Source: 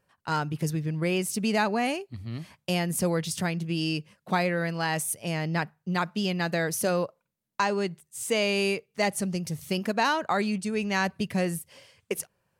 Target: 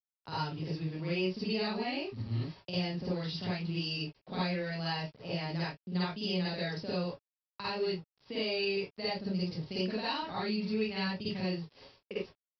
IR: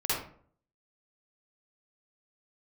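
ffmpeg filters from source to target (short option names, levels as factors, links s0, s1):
-filter_complex "[0:a]acrossover=split=200|2300[s0][s1][s2];[s0]acompressor=threshold=0.00708:ratio=4[s3];[s1]acompressor=threshold=0.0112:ratio=4[s4];[s2]acompressor=threshold=0.02:ratio=4[s5];[s3][s4][s5]amix=inputs=3:normalize=0,aecho=1:1:27|43:0.299|0.133,aresample=11025,aeval=exprs='val(0)*gte(abs(val(0)),0.00376)':c=same,aresample=44100,equalizer=f=1800:t=o:w=1.8:g=-7.5[s6];[1:a]atrim=start_sample=2205,atrim=end_sample=4410[s7];[s6][s7]afir=irnorm=-1:irlink=0,volume=0.631"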